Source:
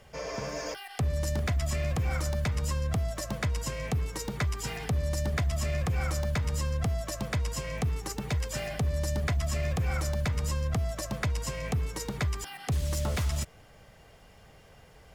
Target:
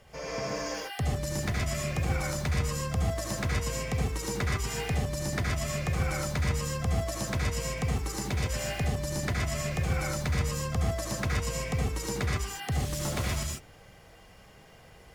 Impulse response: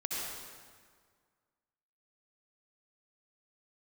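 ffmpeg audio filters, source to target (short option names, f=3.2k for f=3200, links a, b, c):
-filter_complex "[1:a]atrim=start_sample=2205,atrim=end_sample=6615,asetrate=41895,aresample=44100[a];[0:a][a]afir=irnorm=-1:irlink=0"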